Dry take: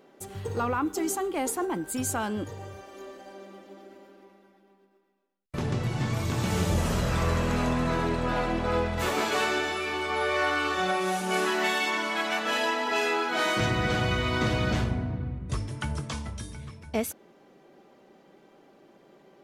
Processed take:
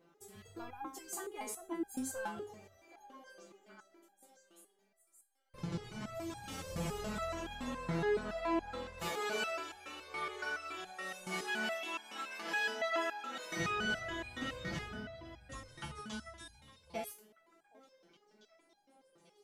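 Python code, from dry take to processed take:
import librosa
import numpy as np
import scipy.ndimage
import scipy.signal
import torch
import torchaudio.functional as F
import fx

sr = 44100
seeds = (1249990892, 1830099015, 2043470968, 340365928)

y = fx.echo_stepped(x, sr, ms=771, hz=600.0, octaves=1.4, feedback_pct=70, wet_db=-9.5)
y = fx.resonator_held(y, sr, hz=7.1, low_hz=170.0, high_hz=820.0)
y = y * 10.0 ** (3.0 / 20.0)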